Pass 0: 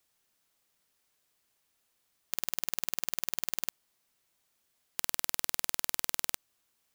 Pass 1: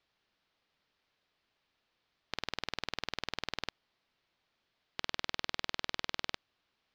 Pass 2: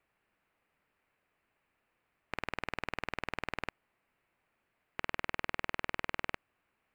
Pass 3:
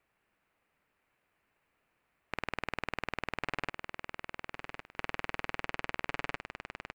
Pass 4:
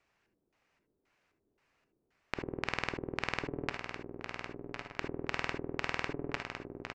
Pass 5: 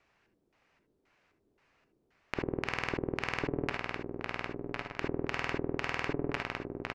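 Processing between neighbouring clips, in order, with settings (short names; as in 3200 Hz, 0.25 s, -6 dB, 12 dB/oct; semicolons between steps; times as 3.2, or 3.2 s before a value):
inverse Chebyshev low-pass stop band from 10000 Hz, stop band 50 dB; gain +1.5 dB
band shelf 4500 Hz -15.5 dB 1.2 oct; gain +3 dB
feedback echo 1.107 s, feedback 26%, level -7 dB; gain +1 dB
outdoor echo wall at 210 m, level -11 dB; LFO low-pass square 1.9 Hz 370–5800 Hz; non-linear reverb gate 90 ms rising, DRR 8 dB; gain +1 dB
hard clip -20 dBFS, distortion -9 dB; air absorption 62 m; gain +5.5 dB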